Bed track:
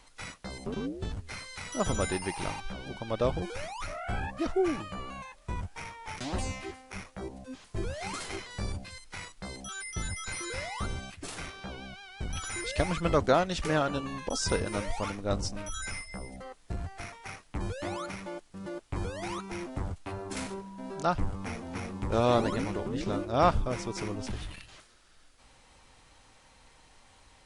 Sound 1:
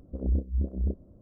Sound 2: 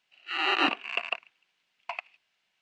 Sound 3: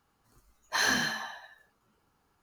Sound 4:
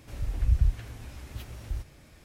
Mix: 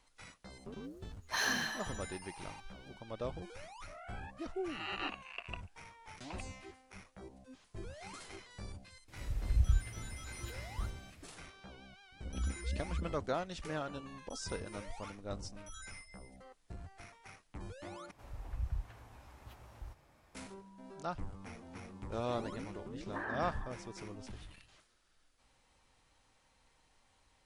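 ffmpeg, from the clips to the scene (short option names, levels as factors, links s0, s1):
-filter_complex "[3:a]asplit=2[s0][s1];[4:a]asplit=2[s2][s3];[0:a]volume=0.251[s4];[1:a]equalizer=f=400:t=o:w=0.77:g=-5.5[s5];[s3]equalizer=f=920:w=0.95:g=13[s6];[s1]lowpass=f=1600:w=0.5412,lowpass=f=1600:w=1.3066[s7];[s4]asplit=2[s8][s9];[s8]atrim=end=18.114[s10];[s6]atrim=end=2.24,asetpts=PTS-STARTPTS,volume=0.178[s11];[s9]atrim=start=20.346[s12];[s0]atrim=end=2.42,asetpts=PTS-STARTPTS,volume=0.473,afade=t=in:d=0.004:c=hsin,afade=t=out:st=2.416:d=0.004:c=hsin,adelay=590[s13];[2:a]atrim=end=2.61,asetpts=PTS-STARTPTS,volume=0.178,afade=t=in:d=0.004:c=hsin,afade=t=out:st=2.606:d=0.004:c=hsin,adelay=194481S[s14];[s2]atrim=end=2.24,asetpts=PTS-STARTPTS,volume=0.501,afade=t=in:d=0.004:c=hsin,afade=t=out:st=2.236:d=0.004:c=hsin,adelay=9080[s15];[s5]atrim=end=1.21,asetpts=PTS-STARTPTS,volume=0.299,afade=t=in:d=0.004:c=hsin,afade=t=out:st=1.206:d=0.004:c=hsin,adelay=12120[s16];[s7]atrim=end=2.42,asetpts=PTS-STARTPTS,volume=0.316,afade=t=in:d=0.004:c=hsin,afade=t=out:st=2.416:d=0.004:c=hsin,adelay=22410[s17];[s10][s11]acrossfade=d=0.004:c1=hsin:c2=hsin[s18];[s18][s12]acrossfade=d=0.004:c1=hsin:c2=hsin[s19];[s19][s13][s14][s15][s16][s17]amix=inputs=6:normalize=0"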